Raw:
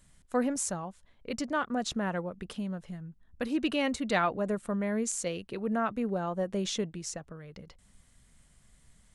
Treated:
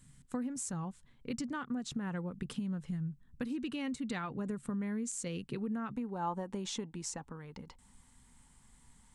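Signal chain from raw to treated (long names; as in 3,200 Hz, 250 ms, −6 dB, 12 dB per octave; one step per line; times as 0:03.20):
thirty-one-band graphic EQ 250 Hz +8 dB, 630 Hz −12 dB, 8,000 Hz +5 dB
downward compressor 6 to 1, threshold −34 dBFS, peak gain reduction 14 dB
parametric band 140 Hz +14 dB 0.48 octaves, from 0:05.97 890 Hz
level −2 dB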